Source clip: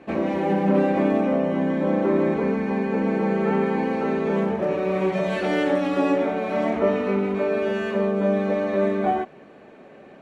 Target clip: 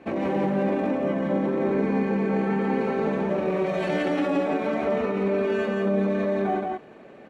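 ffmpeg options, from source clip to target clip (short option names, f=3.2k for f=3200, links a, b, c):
-filter_complex "[0:a]alimiter=limit=-17dB:level=0:latency=1:release=22,atempo=1.4,asplit=2[a][b];[b]aecho=0:1:173:0.708[c];[a][c]amix=inputs=2:normalize=0,volume=-1.5dB"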